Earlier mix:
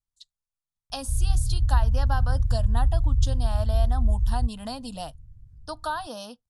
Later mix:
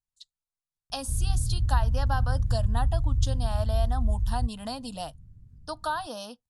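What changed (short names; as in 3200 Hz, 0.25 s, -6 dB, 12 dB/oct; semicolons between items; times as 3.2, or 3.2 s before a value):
background: add bell 240 Hz +11 dB 1.5 oct; master: add low shelf 120 Hz -5.5 dB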